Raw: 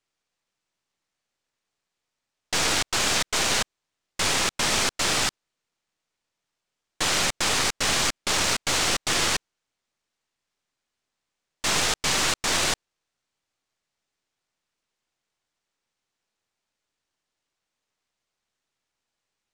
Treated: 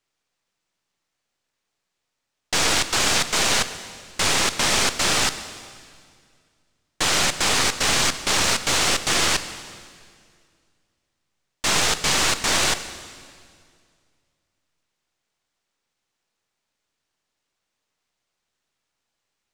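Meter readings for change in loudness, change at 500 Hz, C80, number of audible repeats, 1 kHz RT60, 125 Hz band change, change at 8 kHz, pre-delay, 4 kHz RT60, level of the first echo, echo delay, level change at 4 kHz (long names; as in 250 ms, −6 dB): +3.5 dB, +3.5 dB, 13.0 dB, no echo audible, 2.0 s, +3.5 dB, +3.5 dB, 19 ms, 2.0 s, no echo audible, no echo audible, +3.5 dB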